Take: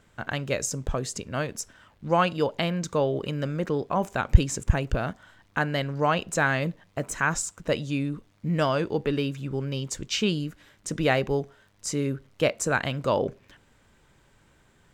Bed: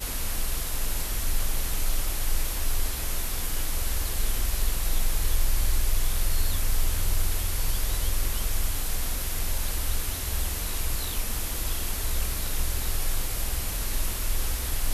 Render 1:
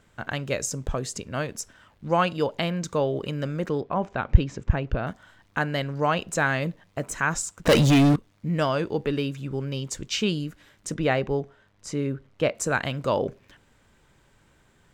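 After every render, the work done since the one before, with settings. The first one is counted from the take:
0:03.81–0:05.07: high-frequency loss of the air 210 metres
0:07.65–0:08.16: leveller curve on the samples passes 5
0:10.94–0:12.55: low-pass filter 2,900 Hz 6 dB per octave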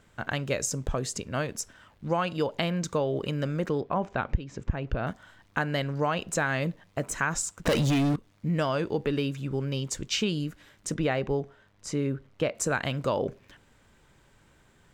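downward compressor 16 to 1, threshold −22 dBFS, peak gain reduction 16.5 dB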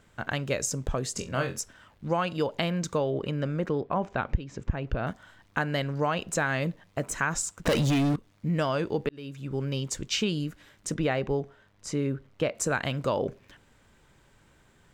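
0:01.14–0:01.59: flutter between parallel walls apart 3.8 metres, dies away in 0.22 s
0:03.10–0:03.91: high-shelf EQ 4,600 Hz −10 dB
0:09.09–0:09.62: fade in linear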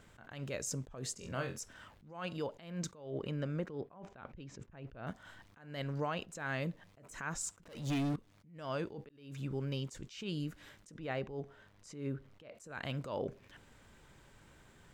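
downward compressor 2.5 to 1, threshold −37 dBFS, peak gain reduction 12 dB
level that may rise only so fast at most 100 dB per second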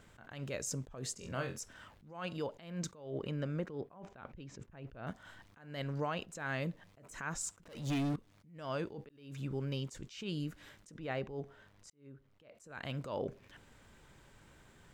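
0:11.90–0:13.07: fade in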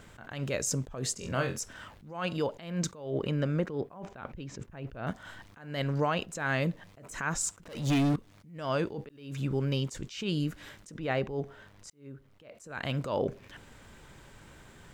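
level +8 dB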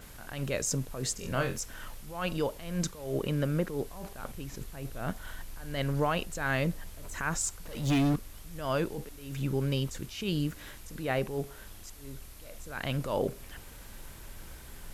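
mix in bed −20 dB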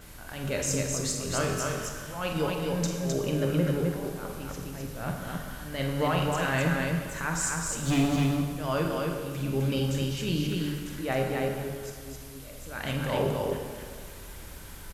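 loudspeakers that aren't time-aligned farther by 16 metres −9 dB, 89 metres −3 dB
dense smooth reverb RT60 1.9 s, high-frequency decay 0.85×, DRR 2.5 dB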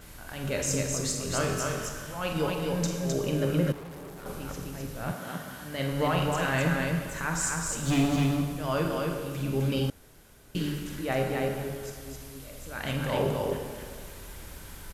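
0:03.72–0:04.26: tube saturation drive 40 dB, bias 0.55
0:05.12–0:05.91: high-pass filter 210 Hz → 79 Hz
0:09.90–0:10.55: fill with room tone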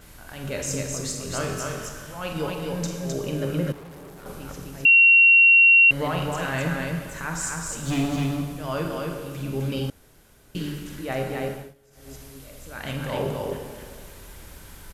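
0:04.85–0:05.91: beep over 2,740 Hz −10.5 dBFS
0:11.50–0:12.14: duck −20.5 dB, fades 0.24 s

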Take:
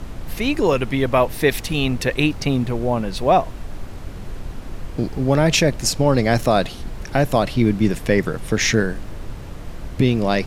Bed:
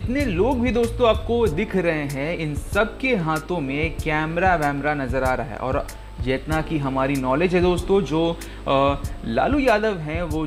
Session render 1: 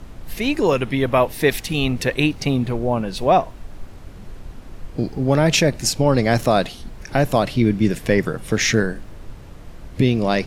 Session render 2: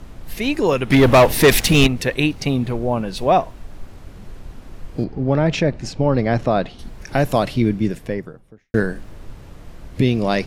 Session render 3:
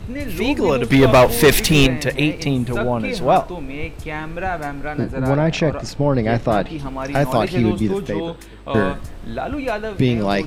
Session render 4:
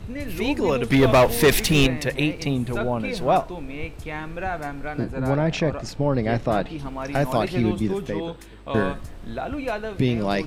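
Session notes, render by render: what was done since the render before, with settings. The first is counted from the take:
noise reduction from a noise print 6 dB
0:00.90–0:01.87: leveller curve on the samples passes 3; 0:05.04–0:06.79: head-to-tape spacing loss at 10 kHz 22 dB; 0:07.42–0:08.74: fade out and dull
mix in bed −5.5 dB
level −4.5 dB

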